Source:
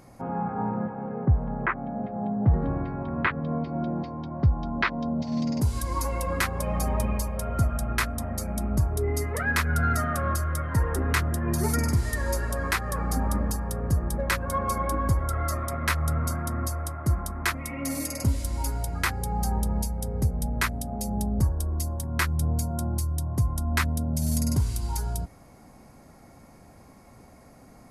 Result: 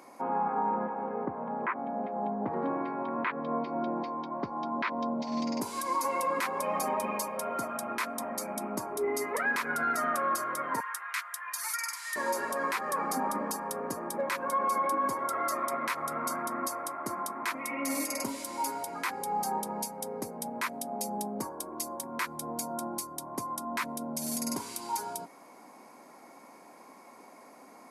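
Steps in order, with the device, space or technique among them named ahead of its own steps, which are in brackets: 10.8–12.16 HPF 1300 Hz 24 dB/oct; laptop speaker (HPF 260 Hz 24 dB/oct; bell 990 Hz +9 dB 0.35 oct; bell 2300 Hz +5 dB 0.22 oct; limiter -21 dBFS, peak gain reduction 12 dB)

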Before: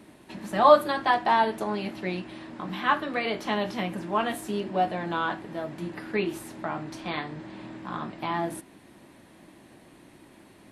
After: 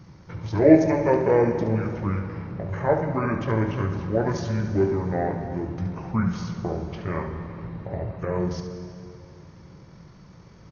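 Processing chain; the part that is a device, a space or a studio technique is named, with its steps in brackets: monster voice (pitch shift -11 st; low shelf 170 Hz +5.5 dB; echo 72 ms -9 dB; reverb RT60 2.7 s, pre-delay 0.106 s, DRR 9 dB); gain +1.5 dB

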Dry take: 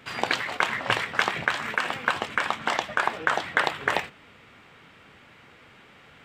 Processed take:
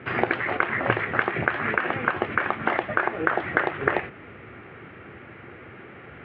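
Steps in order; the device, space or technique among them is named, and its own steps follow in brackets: bass amplifier (compressor 6:1, threshold -27 dBFS, peak gain reduction 10 dB; speaker cabinet 63–2200 Hz, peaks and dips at 71 Hz +6 dB, 110 Hz +6 dB, 360 Hz +9 dB, 970 Hz -6 dB); gain +9 dB

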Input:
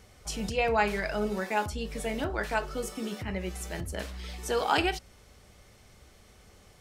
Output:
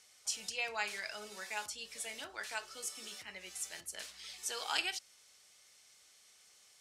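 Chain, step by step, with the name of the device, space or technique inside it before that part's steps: piezo pickup straight into a mixer (LPF 8000 Hz 12 dB/oct; differentiator); gain +4 dB

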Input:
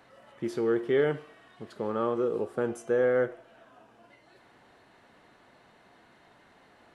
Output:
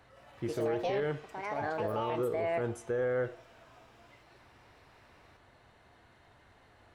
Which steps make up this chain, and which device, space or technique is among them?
1.2–2.54 steep low-pass 8200 Hz; echoes that change speed 0.167 s, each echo +5 st, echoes 2; car stereo with a boomy subwoofer (resonant low shelf 130 Hz +10.5 dB, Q 1.5; limiter -21 dBFS, peak gain reduction 8.5 dB); gain -3 dB

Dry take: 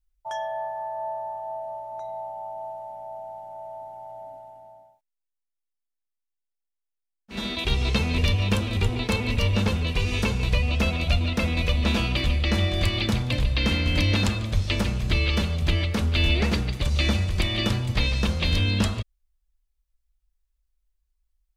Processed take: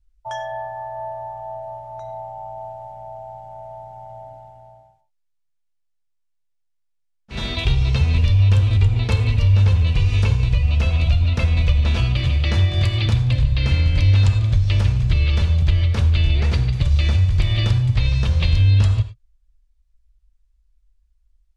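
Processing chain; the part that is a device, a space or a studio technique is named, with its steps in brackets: 12.24–13.06 HPF 90 Hz; jukebox (LPF 8000 Hz 12 dB/oct; resonant low shelf 160 Hz +8.5 dB, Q 3; compressor 3:1, threshold -19 dBFS, peak gain reduction 10 dB); non-linear reverb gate 0.13 s flat, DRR 9.5 dB; gain +3.5 dB

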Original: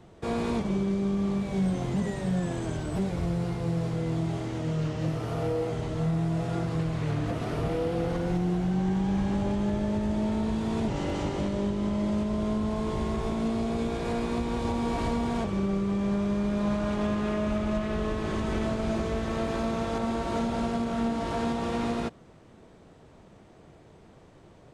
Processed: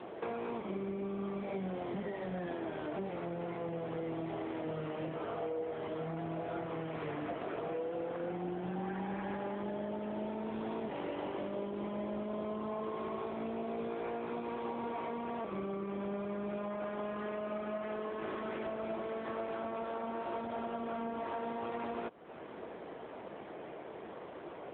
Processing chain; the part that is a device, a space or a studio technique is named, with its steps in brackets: 8.83–9.63 dynamic EQ 1600 Hz, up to +5 dB, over -54 dBFS, Q 1.1; voicemail (BPF 370–2900 Hz; compressor 8:1, threshold -48 dBFS, peak gain reduction 19.5 dB; gain +12 dB; AMR-NB 7.95 kbps 8000 Hz)

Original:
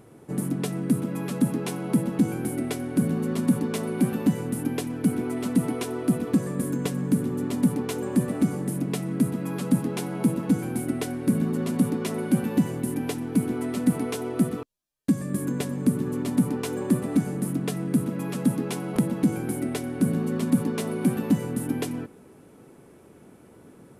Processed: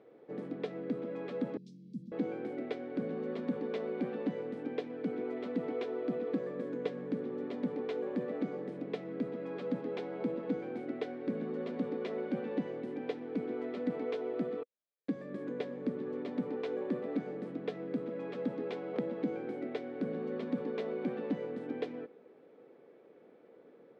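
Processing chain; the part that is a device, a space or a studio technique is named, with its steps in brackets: phone earpiece (speaker cabinet 340–3500 Hz, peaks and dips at 490 Hz +9 dB, 980 Hz -6 dB, 1400 Hz -4 dB, 2800 Hz -6 dB); 1.57–2.12 elliptic band-stop 200–5400 Hz, stop band 70 dB; gain -7 dB

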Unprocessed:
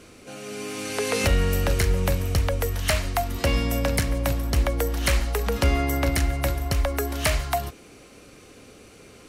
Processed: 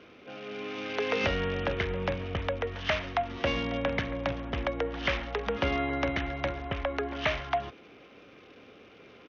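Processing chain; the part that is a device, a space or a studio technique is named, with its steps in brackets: Bluetooth headset (HPF 240 Hz 6 dB/oct; downsampling 8000 Hz; gain -2.5 dB; SBC 64 kbps 48000 Hz)

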